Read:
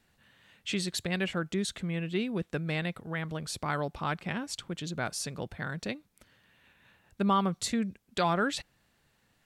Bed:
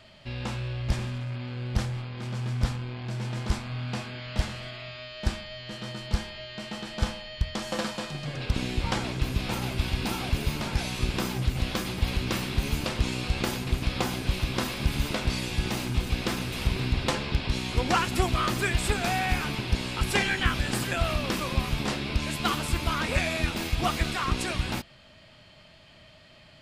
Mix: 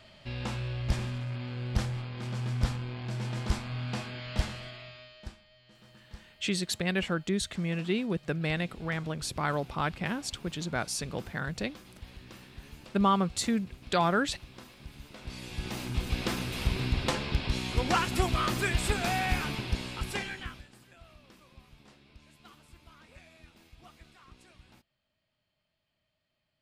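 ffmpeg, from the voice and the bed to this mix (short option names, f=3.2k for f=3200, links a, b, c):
-filter_complex "[0:a]adelay=5750,volume=1.5dB[a];[1:a]volume=16dB,afade=t=out:st=4.39:d=0.97:silence=0.11885,afade=t=in:st=15.12:d=1.12:silence=0.125893,afade=t=out:st=19.41:d=1.28:silence=0.0530884[b];[a][b]amix=inputs=2:normalize=0"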